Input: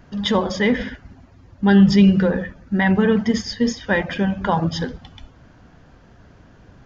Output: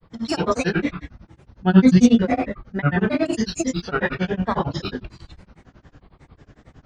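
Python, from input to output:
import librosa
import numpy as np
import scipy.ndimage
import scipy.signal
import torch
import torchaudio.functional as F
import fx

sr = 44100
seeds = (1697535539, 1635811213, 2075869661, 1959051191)

y = fx.rev_gated(x, sr, seeds[0], gate_ms=140, shape='rising', drr_db=-1.5)
y = fx.granulator(y, sr, seeds[1], grain_ms=100.0, per_s=11.0, spray_ms=16.0, spread_st=7)
y = y * 10.0 ** (-2.0 / 20.0)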